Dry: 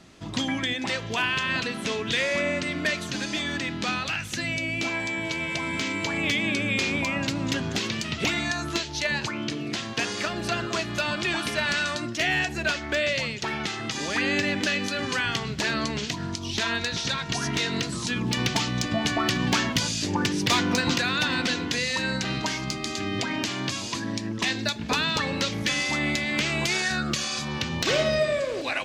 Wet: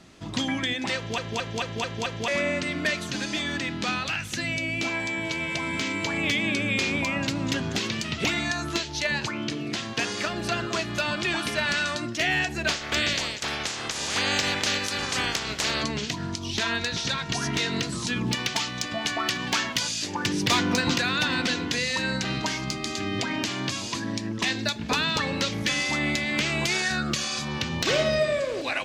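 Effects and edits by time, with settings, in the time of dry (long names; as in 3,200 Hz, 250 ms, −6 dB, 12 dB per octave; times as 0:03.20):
0:00.96: stutter in place 0.22 s, 6 plays
0:12.67–0:15.82: ceiling on every frequency bin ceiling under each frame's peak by 20 dB
0:18.35–0:20.26: low-shelf EQ 420 Hz −11 dB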